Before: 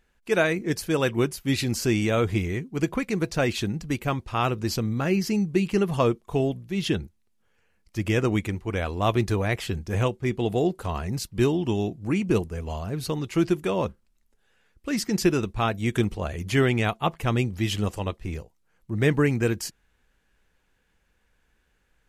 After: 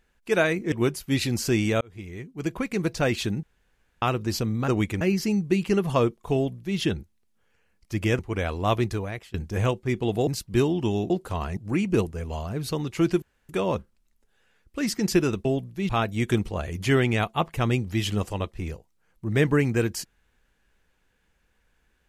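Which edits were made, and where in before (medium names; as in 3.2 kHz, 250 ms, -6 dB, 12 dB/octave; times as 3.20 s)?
0.72–1.09 s: delete
2.18–3.18 s: fade in
3.80–4.39 s: room tone
6.38–6.82 s: copy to 15.55 s
8.23–8.56 s: move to 5.05 s
9.07–9.71 s: fade out, to -23.5 dB
10.64–11.11 s: move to 11.94 s
13.59 s: insert room tone 0.27 s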